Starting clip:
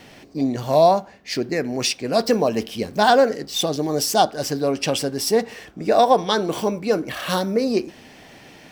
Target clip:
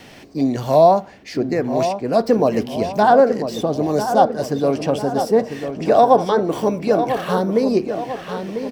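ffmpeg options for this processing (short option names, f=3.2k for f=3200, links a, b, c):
-filter_complex "[0:a]asplit=2[a][b];[b]adelay=996,lowpass=f=1.9k:p=1,volume=-8.5dB,asplit=2[c][d];[d]adelay=996,lowpass=f=1.9k:p=1,volume=0.51,asplit=2[e][f];[f]adelay=996,lowpass=f=1.9k:p=1,volume=0.51,asplit=2[g][h];[h]adelay=996,lowpass=f=1.9k:p=1,volume=0.51,asplit=2[i][j];[j]adelay=996,lowpass=f=1.9k:p=1,volume=0.51,asplit=2[k][l];[l]adelay=996,lowpass=f=1.9k:p=1,volume=0.51[m];[a][c][e][g][i][k][m]amix=inputs=7:normalize=0,acrossover=split=720|1400[n][o][p];[p]acompressor=threshold=-39dB:ratio=5[q];[n][o][q]amix=inputs=3:normalize=0,volume=3dB"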